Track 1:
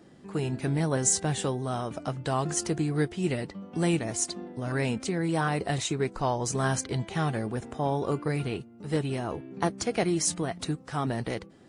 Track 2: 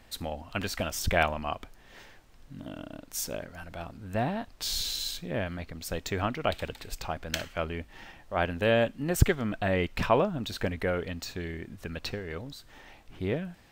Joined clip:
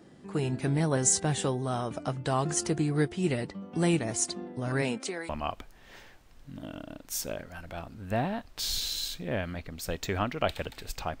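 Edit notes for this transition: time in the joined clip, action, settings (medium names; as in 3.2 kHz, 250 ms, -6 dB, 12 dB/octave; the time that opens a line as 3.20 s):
track 1
4.81–5.29 s: high-pass 150 Hz -> 830 Hz
5.29 s: go over to track 2 from 1.32 s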